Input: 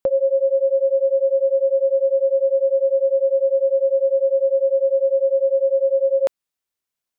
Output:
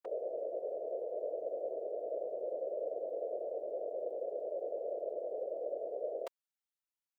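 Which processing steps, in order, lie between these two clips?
high-pass filter 670 Hz 24 dB per octave
output level in coarse steps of 20 dB
random phases in short frames
level +2 dB

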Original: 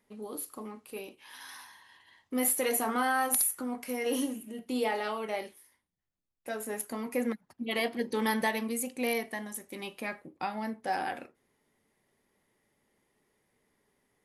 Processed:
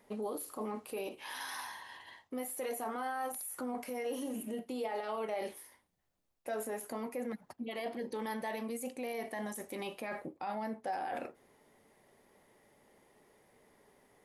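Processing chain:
reversed playback
downward compressor 12 to 1, threshold −39 dBFS, peak gain reduction 16.5 dB
reversed playback
brickwall limiter −39.5 dBFS, peak gain reduction 11.5 dB
parametric band 650 Hz +7.5 dB 1.5 octaves
level +5.5 dB

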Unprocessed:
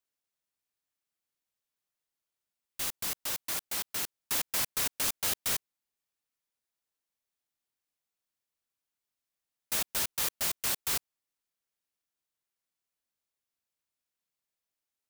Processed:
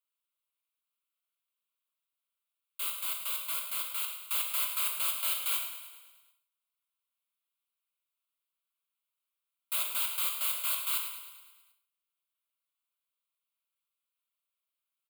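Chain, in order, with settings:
high-pass filter 690 Hz 24 dB per octave
phaser with its sweep stopped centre 1,200 Hz, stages 8
on a send: repeating echo 106 ms, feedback 59%, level −10 dB
on the sum: reverb whose tail is shaped and stops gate 200 ms falling, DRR 3.5 dB

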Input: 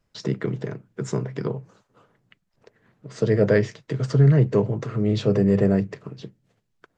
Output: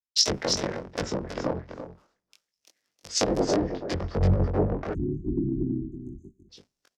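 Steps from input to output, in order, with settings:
sub-harmonics by changed cycles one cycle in 3, inverted
in parallel at −0.5 dB: brickwall limiter −14 dBFS, peak gain reduction 7 dB
on the sum: downward compressor 2.5 to 1, threshold −21 dBFS, peak gain reduction 8.5 dB
treble cut that deepens with the level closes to 730 Hz, closed at −18 dBFS
bass and treble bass −6 dB, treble +5 dB
chorus effect 0.96 Hz, delay 20 ms, depth 2.5 ms
parametric band 5,300 Hz +8 dB 0.49 octaves
on a send: single-tap delay 324 ms −5 dB
on the sum: pitch vibrato 0.45 Hz 56 cents
time-frequency box erased 0:04.94–0:06.49, 400–6,200 Hz
multiband upward and downward expander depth 100%

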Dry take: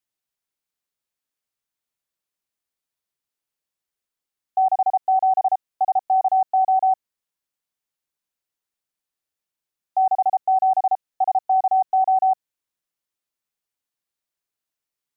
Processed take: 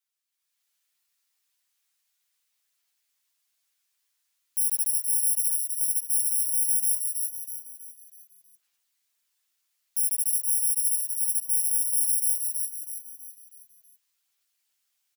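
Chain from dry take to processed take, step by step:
samples in bit-reversed order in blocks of 64 samples
tilt shelving filter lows −10 dB, about 820 Hz
brickwall limiter −19 dBFS, peak gain reduction 16.5 dB
echo with shifted repeats 323 ms, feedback 44%, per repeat +50 Hz, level −5 dB
automatic gain control gain up to 9 dB
multi-voice chorus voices 4, 1.3 Hz, delay 12 ms, depth 3 ms
level −5.5 dB

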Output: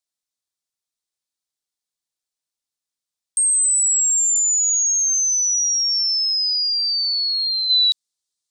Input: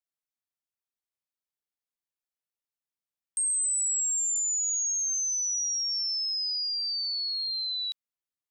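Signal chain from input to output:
flat-topped bell 5,800 Hz +8.5 dB, from 0:07.69 +15.5 dB
level +1.5 dB

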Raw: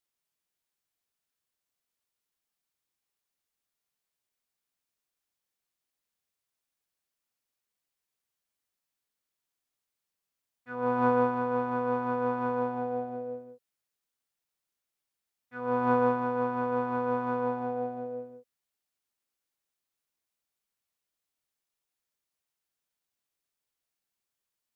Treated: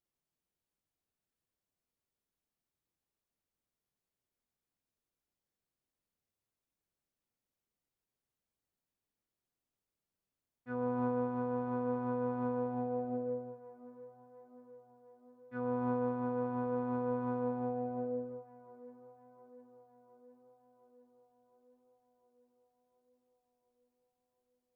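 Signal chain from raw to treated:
tilt shelving filter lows +7.5 dB, about 750 Hz
downward compressor 3 to 1, threshold −33 dBFS, peak gain reduction 11.5 dB
on a send: tape delay 709 ms, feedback 72%, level −18 dB, low-pass 2,200 Hz
on the sum: level −1.5 dB

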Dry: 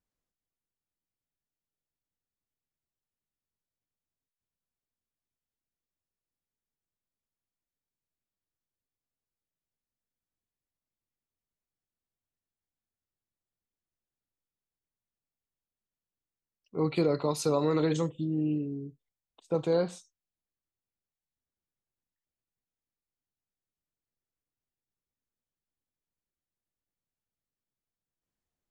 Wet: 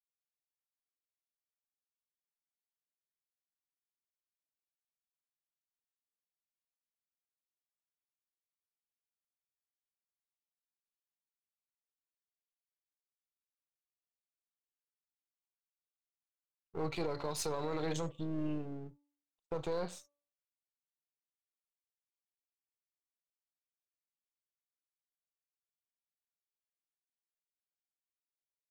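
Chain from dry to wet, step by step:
gain on one half-wave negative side −7 dB
brickwall limiter −24.5 dBFS, peak gain reduction 8 dB
noise gate −55 dBFS, range −32 dB
parametric band 240 Hz −7.5 dB 1.1 octaves
hum removal 288.2 Hz, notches 4

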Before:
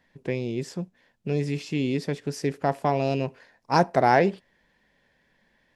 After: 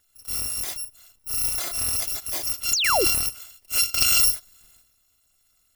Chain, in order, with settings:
samples in bit-reversed order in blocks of 256 samples
sound drawn into the spectrogram fall, 0:02.73–0:03.05, 310–7,500 Hz −22 dBFS
transient designer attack −6 dB, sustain +12 dB

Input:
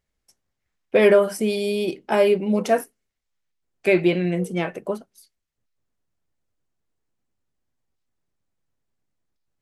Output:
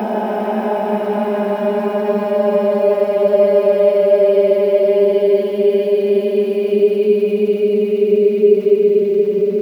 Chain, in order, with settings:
extreme stretch with random phases 42×, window 0.10 s, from 0:02.12
centre clipping without the shift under −33 dBFS
graphic EQ with 10 bands 250 Hz +9 dB, 500 Hz +6 dB, 2,000 Hz −5 dB, 8,000 Hz −12 dB
level −4 dB

